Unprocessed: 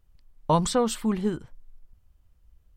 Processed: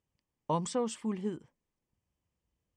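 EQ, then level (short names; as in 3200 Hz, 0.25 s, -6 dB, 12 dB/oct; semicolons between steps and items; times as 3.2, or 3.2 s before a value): speaker cabinet 160–8600 Hz, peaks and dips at 680 Hz -4 dB, 1400 Hz -9 dB, 4000 Hz -10 dB; -7.5 dB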